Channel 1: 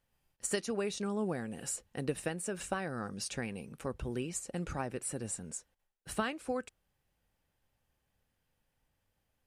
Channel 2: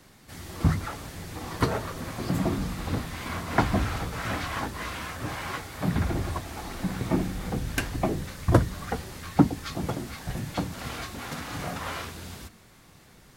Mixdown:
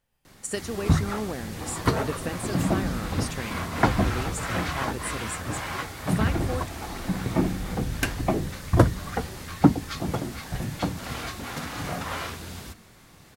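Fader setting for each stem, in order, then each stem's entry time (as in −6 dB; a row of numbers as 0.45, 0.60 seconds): +2.5, +2.0 decibels; 0.00, 0.25 seconds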